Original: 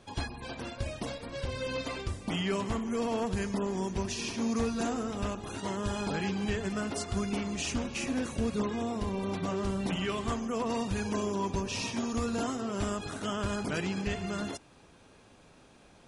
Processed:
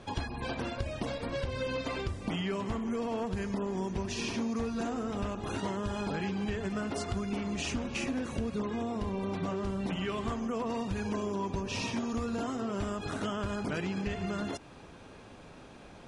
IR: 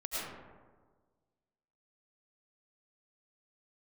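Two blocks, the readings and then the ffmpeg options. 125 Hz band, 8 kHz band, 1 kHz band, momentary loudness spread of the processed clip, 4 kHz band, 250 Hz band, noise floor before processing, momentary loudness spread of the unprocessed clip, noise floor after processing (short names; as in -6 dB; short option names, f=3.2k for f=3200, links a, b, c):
-0.5 dB, -5.5 dB, -1.0 dB, 3 LU, -2.5 dB, -1.0 dB, -58 dBFS, 6 LU, -51 dBFS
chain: -af "aemphasis=mode=reproduction:type=cd,acompressor=threshold=-38dB:ratio=6,volume=7dB"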